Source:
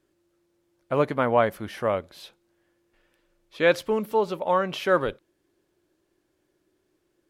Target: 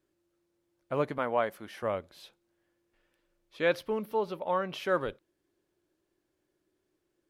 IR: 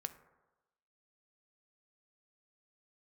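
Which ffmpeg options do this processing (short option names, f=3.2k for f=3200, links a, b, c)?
-filter_complex "[0:a]asettb=1/sr,asplit=3[a][b][c];[a]atrim=end=1.184[d];[b]atrim=start=1.18:end=1.83,asetpts=PTS-STARTPTS,afade=t=in:d=0.004:c=qsin,afade=t=out:st=0.646:d=0.004:c=qsin,highpass=f=300:p=1[e];[c]atrim=start=1.826[f];[d][e]acrossfade=d=0.004:c1=hsin:c2=qsin[g];[g][f]acrossfade=d=0.004:c1=qsin:c2=hsin,asettb=1/sr,asplit=3[h][i][j];[h]atrim=end=3.684[k];[i]atrim=start=3.68:end=4.75,asetpts=PTS-STARTPTS,afade=t=in:d=0.004:c=qsin,afade=t=out:st=1.066:d=0.004:c=qsin,equalizer=f=7.4k:t=o:w=0.41:g=-10.5[l];[j]atrim=start=4.746[m];[k][l]acrossfade=d=0.004:c1=hsin:c2=qsin[n];[n][m]acrossfade=d=0.004:c1=qsin:c2=hsin,volume=-7dB"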